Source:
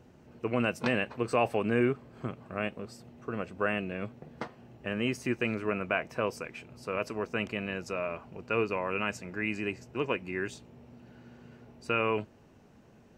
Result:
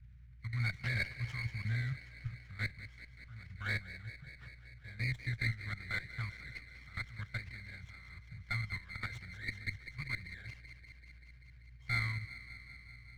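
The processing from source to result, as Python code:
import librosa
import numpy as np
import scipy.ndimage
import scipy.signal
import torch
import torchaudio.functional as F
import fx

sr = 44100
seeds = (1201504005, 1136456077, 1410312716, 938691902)

y = fx.freq_compress(x, sr, knee_hz=1500.0, ratio=1.5)
y = fx.high_shelf(y, sr, hz=3800.0, db=-9.5)
y = fx.level_steps(y, sr, step_db=16)
y = fx.add_hum(y, sr, base_hz=60, snr_db=25)
y = scipy.signal.sosfilt(scipy.signal.cheby1(3, 1.0, [120.0, 1900.0], 'bandstop', fs=sr, output='sos'), y)
y = fx.air_absorb(y, sr, metres=300.0)
y = fx.echo_wet_highpass(y, sr, ms=193, feedback_pct=76, hz=2600.0, wet_db=-7.0)
y = fx.running_max(y, sr, window=5)
y = y * 10.0 ** (9.0 / 20.0)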